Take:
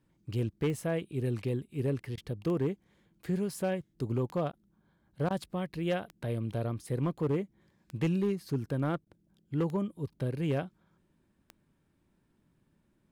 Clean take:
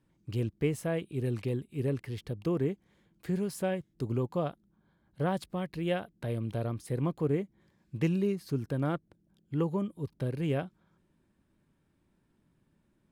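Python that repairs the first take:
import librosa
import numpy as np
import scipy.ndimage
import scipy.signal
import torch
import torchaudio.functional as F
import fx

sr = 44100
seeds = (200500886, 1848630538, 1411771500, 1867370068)

y = fx.fix_declip(x, sr, threshold_db=-23.5)
y = fx.fix_declick_ar(y, sr, threshold=10.0)
y = fx.fix_interpolate(y, sr, at_s=(2.16, 4.52, 5.29, 9.05), length_ms=13.0)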